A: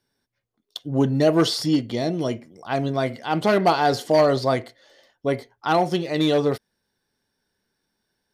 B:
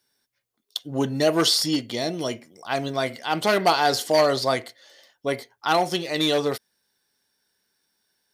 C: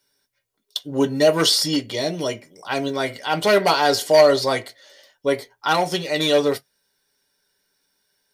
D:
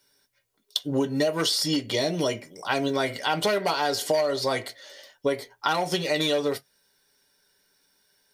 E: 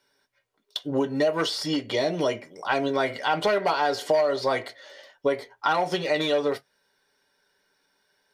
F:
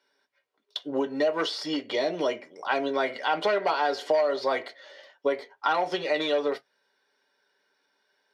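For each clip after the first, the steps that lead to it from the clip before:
tilt +2.5 dB/oct
reverb RT60 0.10 s, pre-delay 4 ms, DRR 5 dB; gain +1 dB
compressor 10:1, threshold -24 dBFS, peak gain reduction 15.5 dB; gain +3 dB
overdrive pedal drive 9 dB, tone 1300 Hz, clips at -6 dBFS; gain +1 dB
three-band isolator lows -23 dB, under 210 Hz, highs -12 dB, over 5700 Hz; gain -1.5 dB

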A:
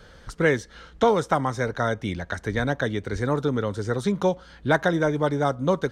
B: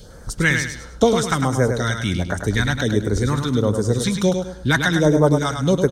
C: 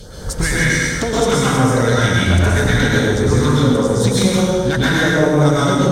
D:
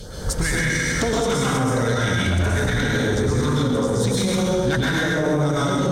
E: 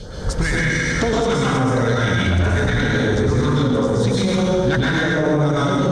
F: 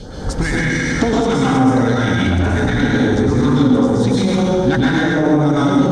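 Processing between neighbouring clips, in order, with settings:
high shelf 6000 Hz +9.5 dB; phaser stages 2, 1.4 Hz, lowest notch 430–3300 Hz; feedback echo 0.103 s, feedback 33%, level -6.5 dB; gain +7.5 dB
compressor, threshold -22 dBFS, peak gain reduction 12 dB; sine folder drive 7 dB, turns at -9.5 dBFS; plate-style reverb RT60 1.3 s, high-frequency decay 0.75×, pre-delay 0.11 s, DRR -6.5 dB; gain -5 dB
limiter -12.5 dBFS, peak gain reduction 11 dB
air absorption 87 m; gain +3 dB
small resonant body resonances 270/790 Hz, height 9 dB, ringing for 30 ms

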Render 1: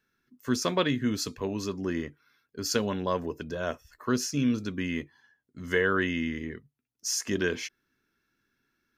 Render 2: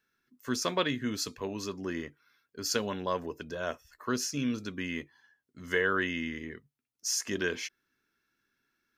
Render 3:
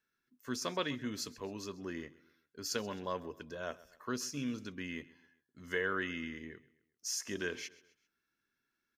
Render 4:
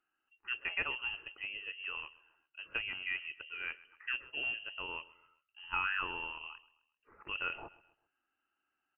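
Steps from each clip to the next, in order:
low shelf 370 Hz -6.5 dB; gain -1 dB
feedback echo 0.131 s, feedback 42%, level -20 dB; gain -6.5 dB
inverted band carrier 3000 Hz

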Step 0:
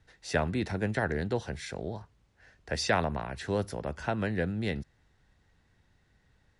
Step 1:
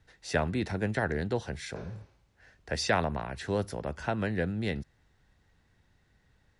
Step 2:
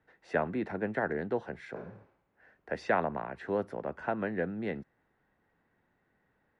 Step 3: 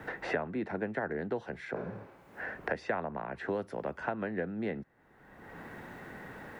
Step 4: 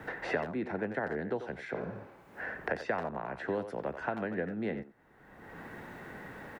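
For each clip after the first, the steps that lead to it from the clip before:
spectral repair 1.78–2.22, 200–6700 Hz both
three-band isolator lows -18 dB, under 180 Hz, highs -23 dB, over 2200 Hz
three-band squash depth 100%; gain -2 dB
speakerphone echo 90 ms, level -9 dB

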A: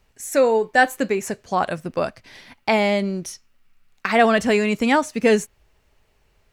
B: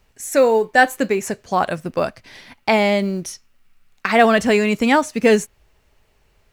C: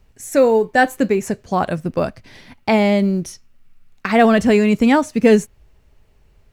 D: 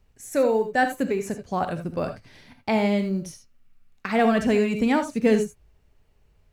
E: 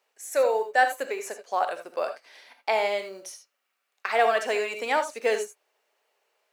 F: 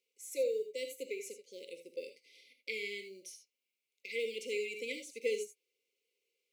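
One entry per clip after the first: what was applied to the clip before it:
companded quantiser 8-bit; gain +2.5 dB
low shelf 380 Hz +10.5 dB; gain -3 dB
non-linear reverb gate 0.1 s rising, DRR 7.5 dB; gain -8 dB
HPF 500 Hz 24 dB/oct; gain +1.5 dB
brick-wall FIR band-stop 550–2000 Hz; gain -8.5 dB

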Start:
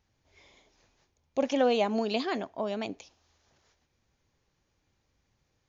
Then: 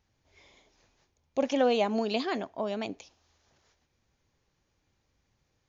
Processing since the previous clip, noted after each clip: nothing audible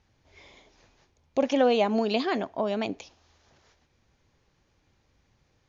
in parallel at -1 dB: compressor, threshold -35 dBFS, peak gain reduction 13.5 dB; on the sum: air absorption 58 m; gain +1.5 dB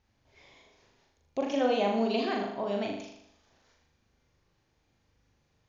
flutter echo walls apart 6.8 m, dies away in 0.74 s; gain -6.5 dB

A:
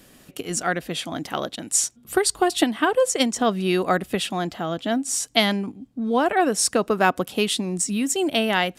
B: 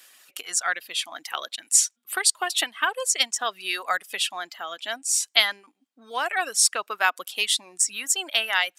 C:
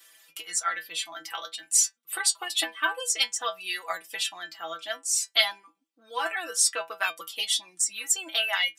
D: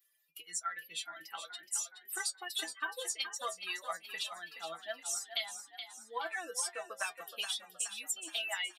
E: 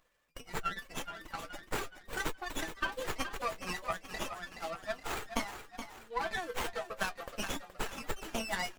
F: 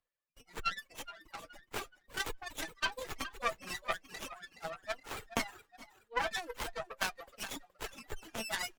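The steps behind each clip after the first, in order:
HPF 1300 Hz 12 dB/oct; reverb removal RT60 1 s; gain +3 dB
metallic resonator 160 Hz, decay 0.2 s, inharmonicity 0.002; gain +7 dB
per-bin expansion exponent 1.5; compressor 6:1, threshold -32 dBFS, peak gain reduction 14 dB; on a send: frequency-shifting echo 0.422 s, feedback 50%, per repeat +39 Hz, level -9.5 dB; on the sum: gain -2 dB
running maximum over 9 samples; gain +4 dB
reverb removal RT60 1 s; added harmonics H 4 -21 dB, 6 -18 dB, 7 -29 dB, 8 -14 dB, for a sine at -15 dBFS; three-band expander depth 40%

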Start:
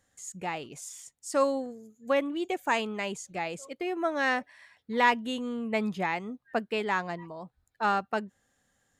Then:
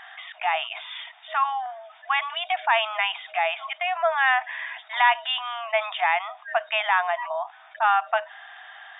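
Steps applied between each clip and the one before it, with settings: FFT band-pass 630–3700 Hz; fast leveller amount 50%; gain +4 dB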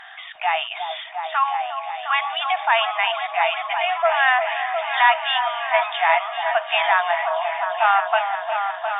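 repeats that get brighter 0.355 s, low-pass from 750 Hz, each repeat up 1 oct, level -3 dB; gain +3 dB; Vorbis 64 kbps 44100 Hz

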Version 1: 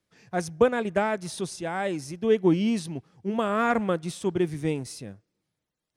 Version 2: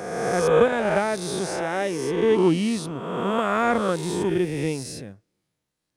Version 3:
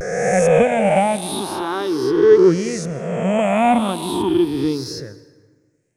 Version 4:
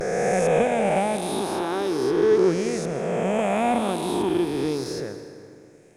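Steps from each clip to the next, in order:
spectral swells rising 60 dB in 1.59 s
moving spectral ripple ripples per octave 0.55, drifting +0.37 Hz, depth 18 dB; vibrato 0.83 Hz 68 cents; plate-style reverb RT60 1.5 s, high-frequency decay 0.6×, pre-delay 0.115 s, DRR 16 dB; gain +1.5 dB
per-bin compression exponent 0.6; gain -9 dB

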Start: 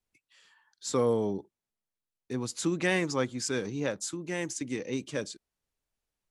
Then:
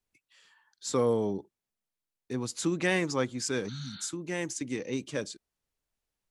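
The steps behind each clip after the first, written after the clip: spectral repair 3.71–4.05, 260–4600 Hz after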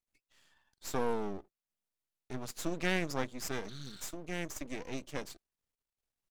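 half-wave rectifier; gain -2.5 dB

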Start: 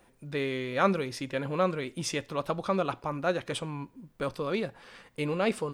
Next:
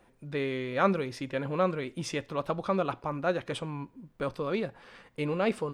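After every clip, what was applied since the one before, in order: high shelf 4300 Hz -8 dB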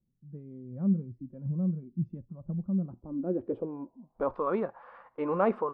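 low-pass sweep 170 Hz -> 1100 Hz, 2.8–4.43; spectral noise reduction 14 dB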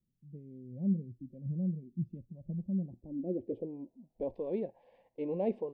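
Butterworth band-stop 1300 Hz, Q 0.63; gain -4 dB

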